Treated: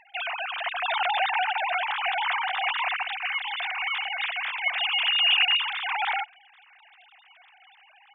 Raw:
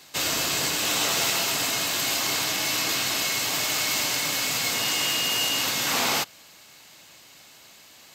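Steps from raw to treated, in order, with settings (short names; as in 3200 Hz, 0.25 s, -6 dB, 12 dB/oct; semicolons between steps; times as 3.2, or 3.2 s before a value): sine-wave speech; 0.62–3.03 dynamic EQ 930 Hz, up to +7 dB, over -43 dBFS, Q 0.81; gain -2.5 dB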